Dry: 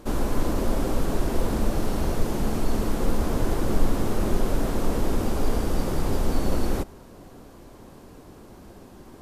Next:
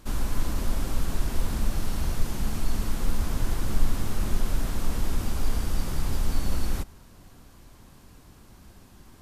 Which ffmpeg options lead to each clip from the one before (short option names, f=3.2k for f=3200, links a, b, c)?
-af "equalizer=f=450:w=0.57:g=-13"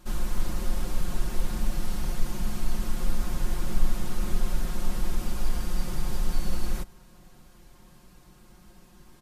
-af "aecho=1:1:5.6:0.85,volume=-4.5dB"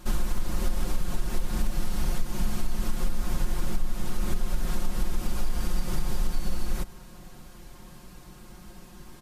-af "acompressor=threshold=-26dB:ratio=5,volume=6.5dB"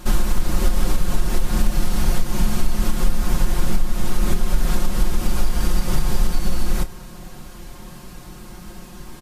-filter_complex "[0:a]asplit=2[a][b];[b]adelay=29,volume=-12dB[c];[a][c]amix=inputs=2:normalize=0,volume=8.5dB"